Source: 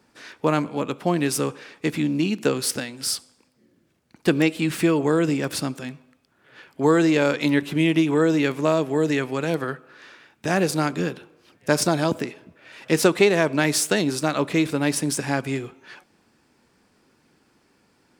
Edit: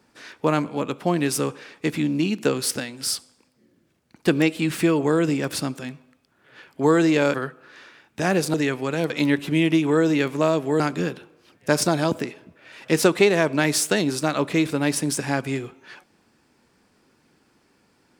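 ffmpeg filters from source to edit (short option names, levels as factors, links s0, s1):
-filter_complex "[0:a]asplit=5[s0][s1][s2][s3][s4];[s0]atrim=end=7.342[s5];[s1]atrim=start=9.598:end=10.802[s6];[s2]atrim=start=9.038:end=9.602[s7];[s3]atrim=start=7.338:end=9.042[s8];[s4]atrim=start=10.798[s9];[s5][s6]acrossfade=d=0.004:c1=hsin:c2=hsin[s10];[s10][s7]acrossfade=d=0.004:c1=hsin:c2=hsin[s11];[s11][s8]acrossfade=d=0.004:c1=hsin:c2=hsin[s12];[s12][s9]acrossfade=d=0.004:c1=hsin:c2=hsin"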